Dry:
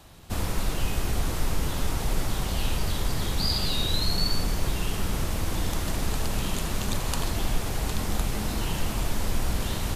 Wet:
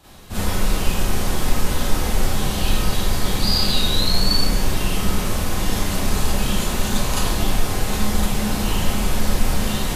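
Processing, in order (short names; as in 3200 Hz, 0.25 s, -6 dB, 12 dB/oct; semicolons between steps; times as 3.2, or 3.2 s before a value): Schroeder reverb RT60 0.4 s, combs from 30 ms, DRR -9 dB; gain -2 dB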